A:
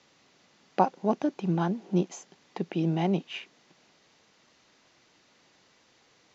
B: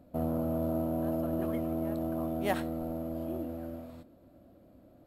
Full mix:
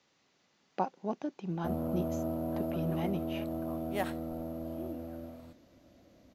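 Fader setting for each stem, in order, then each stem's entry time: −9.0, −3.0 decibels; 0.00, 1.50 seconds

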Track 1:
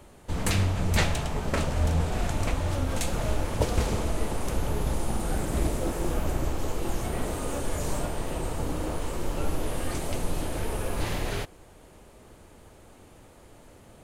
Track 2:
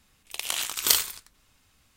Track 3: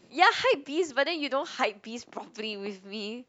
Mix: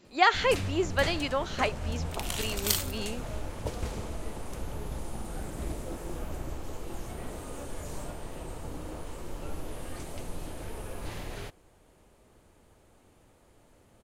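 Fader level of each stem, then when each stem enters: −9.0, −7.0, −1.0 decibels; 0.05, 1.80, 0.00 seconds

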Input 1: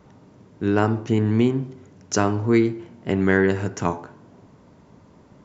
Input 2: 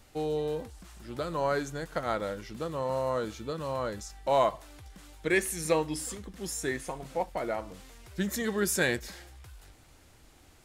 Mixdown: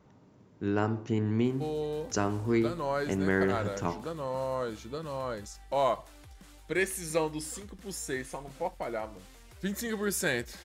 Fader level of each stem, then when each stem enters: −9.0, −2.5 decibels; 0.00, 1.45 seconds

